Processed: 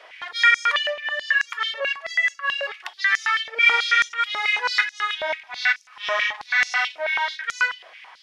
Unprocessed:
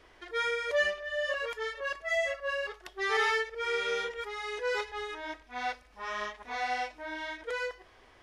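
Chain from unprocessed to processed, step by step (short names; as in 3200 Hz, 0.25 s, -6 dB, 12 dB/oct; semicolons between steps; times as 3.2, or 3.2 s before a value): bell 2500 Hz +11.5 dB 2.6 oct; 0.77–3.5 compressor 2.5:1, threshold -29 dBFS, peak gain reduction 10 dB; stepped high-pass 9.2 Hz 620–6200 Hz; gain +2 dB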